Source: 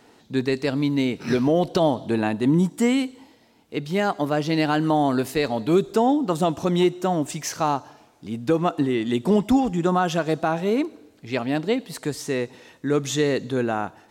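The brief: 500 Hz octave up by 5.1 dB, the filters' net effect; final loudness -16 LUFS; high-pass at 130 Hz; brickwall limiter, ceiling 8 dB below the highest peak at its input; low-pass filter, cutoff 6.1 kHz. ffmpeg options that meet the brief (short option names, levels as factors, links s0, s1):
-af "highpass=130,lowpass=6100,equalizer=f=500:t=o:g=6.5,volume=2.11,alimiter=limit=0.562:level=0:latency=1"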